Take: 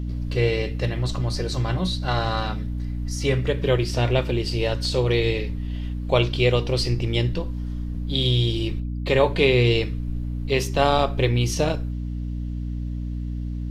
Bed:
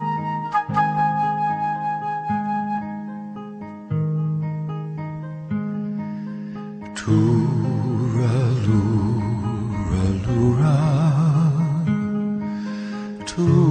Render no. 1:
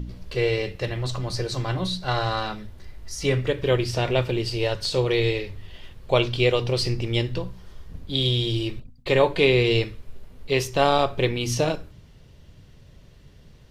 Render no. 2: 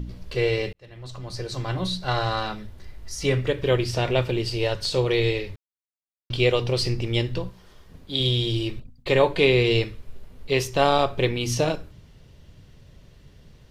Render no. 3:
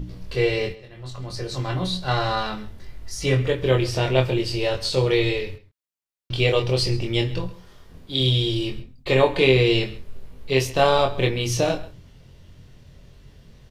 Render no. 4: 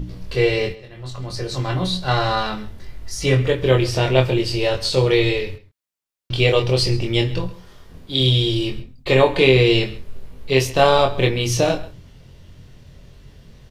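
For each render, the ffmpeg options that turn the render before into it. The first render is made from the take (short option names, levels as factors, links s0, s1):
-af "bandreject=f=60:t=h:w=4,bandreject=f=120:t=h:w=4,bandreject=f=180:t=h:w=4,bandreject=f=240:t=h:w=4,bandreject=f=300:t=h:w=4"
-filter_complex "[0:a]asettb=1/sr,asplit=3[s0][s1][s2];[s0]atrim=end=7.494[s3];[s1]atrim=start=7.49:end=8.2,asetpts=PTS-STARTPTS,afade=t=in:d=0.004:c=qsin,afade=t=out:st=0.706:d=0.004:c=qsin,lowshelf=f=140:g=-11.5[s4];[s2]atrim=start=8.196[s5];[s3][s4]acrossfade=d=0.004:c1=hsin:c2=qsin[s6];[s6][s5]acrossfade=d=0.004:c1=qsin:c2=hsin,asplit=4[s7][s8][s9][s10];[s7]atrim=end=0.73,asetpts=PTS-STARTPTS,afade=t=out:st=0.726:d=0.004:c=hsin[s11];[s8]atrim=start=0.73:end=5.56,asetpts=PTS-STARTPTS,afade=t=in:d=1.15,afade=t=out:st=4.826:d=0.004:c=hsin[s12];[s9]atrim=start=5.56:end=6.3,asetpts=PTS-STARTPTS,volume=0[s13];[s10]atrim=start=6.3,asetpts=PTS-STARTPTS,afade=t=in:d=0.004:c=hsin[s14];[s11][s12][s13][s14]concat=n=4:v=0:a=1"
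-filter_complex "[0:a]asplit=2[s0][s1];[s1]adelay=23,volume=0.668[s2];[s0][s2]amix=inputs=2:normalize=0,asplit=2[s3][s4];[s4]adelay=134.1,volume=0.126,highshelf=f=4000:g=-3.02[s5];[s3][s5]amix=inputs=2:normalize=0"
-af "volume=1.5,alimiter=limit=0.891:level=0:latency=1"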